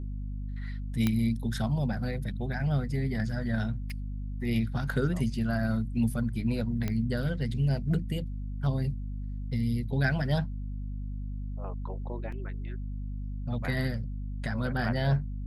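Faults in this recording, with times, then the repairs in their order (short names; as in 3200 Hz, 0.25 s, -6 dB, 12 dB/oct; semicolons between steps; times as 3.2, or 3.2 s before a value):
hum 50 Hz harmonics 5 -35 dBFS
1.07 pop -13 dBFS
3.9 pop -29 dBFS
6.88 pop -18 dBFS
12.32 gap 3.8 ms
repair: de-click; de-hum 50 Hz, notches 5; interpolate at 12.32, 3.8 ms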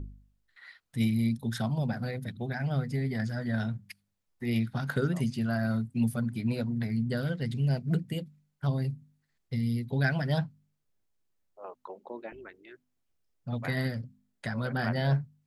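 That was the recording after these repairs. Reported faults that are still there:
1.07 pop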